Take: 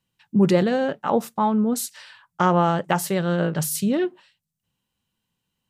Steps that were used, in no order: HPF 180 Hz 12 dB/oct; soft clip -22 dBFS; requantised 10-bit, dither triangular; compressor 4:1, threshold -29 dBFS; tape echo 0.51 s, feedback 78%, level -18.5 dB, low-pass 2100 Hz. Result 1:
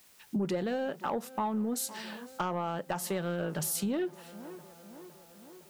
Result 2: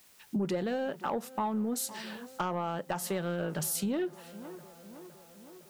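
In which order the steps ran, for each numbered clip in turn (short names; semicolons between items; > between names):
tape echo > HPF > requantised > compressor > soft clip; HPF > tape echo > requantised > compressor > soft clip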